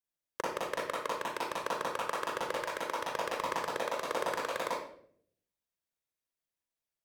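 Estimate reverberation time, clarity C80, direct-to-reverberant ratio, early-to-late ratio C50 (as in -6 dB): 0.60 s, 5.0 dB, -5.0 dB, -1.0 dB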